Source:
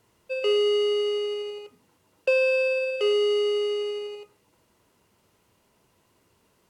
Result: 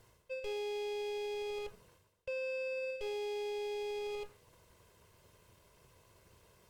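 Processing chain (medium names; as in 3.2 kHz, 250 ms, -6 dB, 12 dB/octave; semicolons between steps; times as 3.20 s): comb filter that takes the minimum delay 1.9 ms; bass shelf 180 Hz +6.5 dB; reverse; compression 8:1, threshold -39 dBFS, peak gain reduction 21 dB; reverse; trim +1.5 dB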